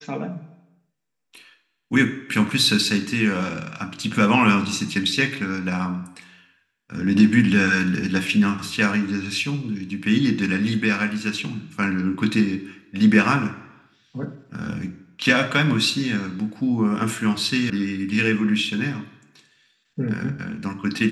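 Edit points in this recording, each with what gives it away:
17.70 s: sound stops dead

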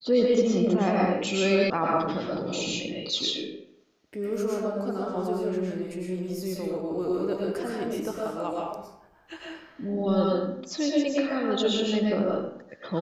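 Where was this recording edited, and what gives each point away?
1.70 s: sound stops dead

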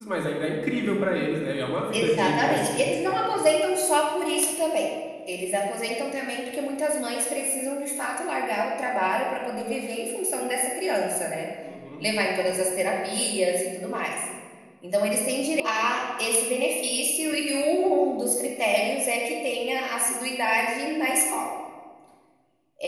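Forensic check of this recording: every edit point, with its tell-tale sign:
15.60 s: sound stops dead

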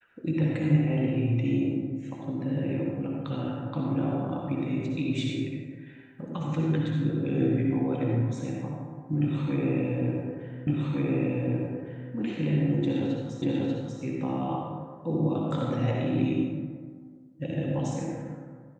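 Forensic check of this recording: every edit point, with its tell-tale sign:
10.67 s: repeat of the last 1.46 s
13.42 s: repeat of the last 0.59 s

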